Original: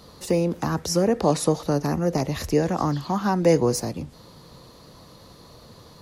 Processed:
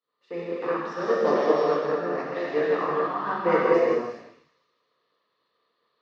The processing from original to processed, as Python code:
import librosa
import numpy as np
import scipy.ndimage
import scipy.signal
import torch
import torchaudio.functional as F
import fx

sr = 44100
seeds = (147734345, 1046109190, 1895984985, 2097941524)

y = fx.sample_sort(x, sr, block=8, at=(0.93, 1.5), fade=0.02)
y = fx.cabinet(y, sr, low_hz=390.0, low_slope=12, high_hz=3200.0, hz=(450.0, 790.0, 1200.0, 1800.0), db=(5, -4, 9, 6))
y = fx.echo_wet_highpass(y, sr, ms=153, feedback_pct=67, hz=2300.0, wet_db=-8.5)
y = fx.rev_gated(y, sr, seeds[0], gate_ms=460, shape='flat', drr_db=-6.5)
y = fx.band_widen(y, sr, depth_pct=100)
y = y * 10.0 ** (-7.5 / 20.0)